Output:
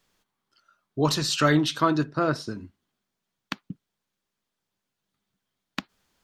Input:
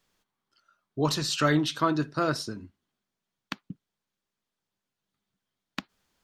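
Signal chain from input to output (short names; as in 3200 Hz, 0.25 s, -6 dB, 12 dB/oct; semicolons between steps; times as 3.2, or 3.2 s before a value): 2.02–2.47 high shelf 2400 Hz -> 4500 Hz -11 dB; gain +3 dB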